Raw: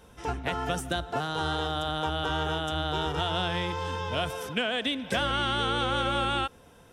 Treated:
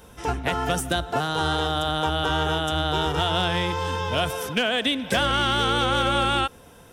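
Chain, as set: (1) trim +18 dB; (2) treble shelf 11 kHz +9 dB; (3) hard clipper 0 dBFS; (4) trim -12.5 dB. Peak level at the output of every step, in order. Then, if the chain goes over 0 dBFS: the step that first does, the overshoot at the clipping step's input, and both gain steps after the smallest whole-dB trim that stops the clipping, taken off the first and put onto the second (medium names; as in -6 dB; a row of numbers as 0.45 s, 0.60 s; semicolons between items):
+3.0 dBFS, +3.5 dBFS, 0.0 dBFS, -12.5 dBFS; step 1, 3.5 dB; step 1 +14 dB, step 4 -8.5 dB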